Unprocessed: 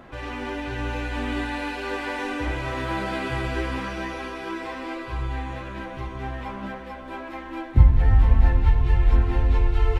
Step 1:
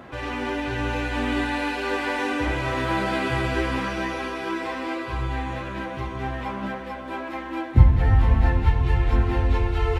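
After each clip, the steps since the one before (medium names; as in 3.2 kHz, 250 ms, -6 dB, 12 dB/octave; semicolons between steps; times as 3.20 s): high-pass 65 Hz; trim +3.5 dB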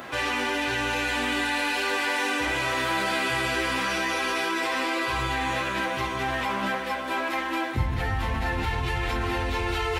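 tilt EQ +3 dB/octave; in parallel at +1.5 dB: compressor with a negative ratio -32 dBFS, ratio -1; on the sum: trim -3.5 dB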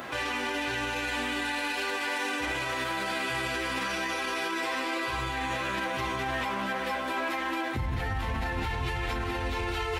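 peak limiter -22.5 dBFS, peak gain reduction 9 dB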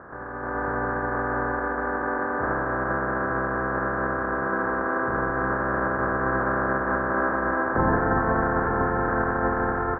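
spectral peaks clipped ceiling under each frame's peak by 22 dB; level rider gain up to 11 dB; rippled Chebyshev low-pass 1.7 kHz, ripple 3 dB; trim +1 dB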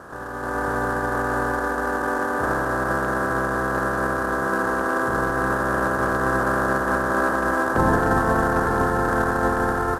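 CVSD coder 64 kbps; trim +3 dB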